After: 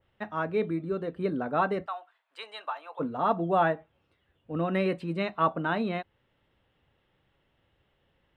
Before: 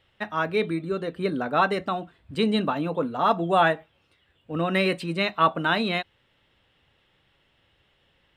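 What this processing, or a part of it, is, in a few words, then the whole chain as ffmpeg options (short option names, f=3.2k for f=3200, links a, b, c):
through cloth: -filter_complex "[0:a]highshelf=f=2.2k:g=-12.5,asplit=3[a][b][c];[a]afade=t=out:st=1.85:d=0.02[d];[b]highpass=f=790:w=0.5412,highpass=f=790:w=1.3066,afade=t=in:st=1.85:d=0.02,afade=t=out:st=2.99:d=0.02[e];[c]afade=t=in:st=2.99:d=0.02[f];[d][e][f]amix=inputs=3:normalize=0,adynamicequalizer=threshold=0.00891:dfrequency=2400:dqfactor=0.7:tfrequency=2400:tqfactor=0.7:attack=5:release=100:ratio=0.375:range=3:mode=cutabove:tftype=highshelf,volume=-2.5dB"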